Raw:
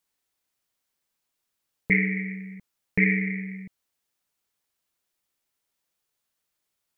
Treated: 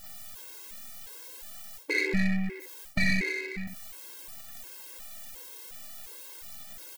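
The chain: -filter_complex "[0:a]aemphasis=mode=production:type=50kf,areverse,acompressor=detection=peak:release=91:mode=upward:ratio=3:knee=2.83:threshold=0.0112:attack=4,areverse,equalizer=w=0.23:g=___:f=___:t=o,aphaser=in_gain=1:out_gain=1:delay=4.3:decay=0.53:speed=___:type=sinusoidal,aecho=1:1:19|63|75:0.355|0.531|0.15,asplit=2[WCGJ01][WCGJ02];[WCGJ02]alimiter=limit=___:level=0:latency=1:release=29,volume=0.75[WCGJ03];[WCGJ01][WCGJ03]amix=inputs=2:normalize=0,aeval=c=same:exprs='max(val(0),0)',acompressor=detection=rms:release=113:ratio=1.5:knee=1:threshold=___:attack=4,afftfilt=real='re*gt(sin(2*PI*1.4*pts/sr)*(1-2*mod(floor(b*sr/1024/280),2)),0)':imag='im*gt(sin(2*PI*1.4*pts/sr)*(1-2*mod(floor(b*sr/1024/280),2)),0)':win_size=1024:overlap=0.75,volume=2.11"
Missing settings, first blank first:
15, 510, 0.45, 0.168, 0.00891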